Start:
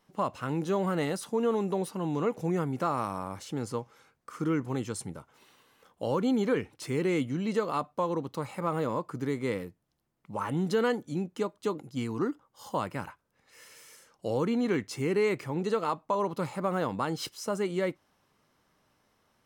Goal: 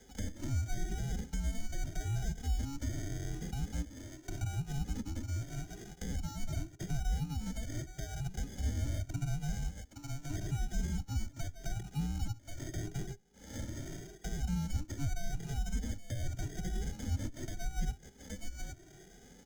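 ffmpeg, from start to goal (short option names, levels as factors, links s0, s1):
-filter_complex "[0:a]aecho=1:1:2.8:0.95,aecho=1:1:819:0.0708,areverse,acompressor=threshold=0.0251:ratio=10,areverse,acrusher=samples=29:mix=1:aa=0.000001,afreqshift=-410,equalizer=f=6400:t=o:w=0.41:g=13.5,alimiter=level_in=2.99:limit=0.0631:level=0:latency=1:release=440,volume=0.335,acrossover=split=220[s0][s1];[s1]acompressor=threshold=0.00112:ratio=4[s2];[s0][s2]amix=inputs=2:normalize=0,asplit=2[s3][s4];[s4]adelay=2,afreqshift=0.83[s5];[s3][s5]amix=inputs=2:normalize=1,volume=5.31"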